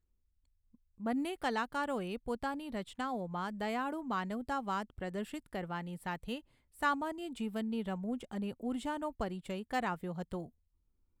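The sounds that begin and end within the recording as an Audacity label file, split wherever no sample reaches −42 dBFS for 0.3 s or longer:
1.010000	6.390000	sound
6.820000	10.460000	sound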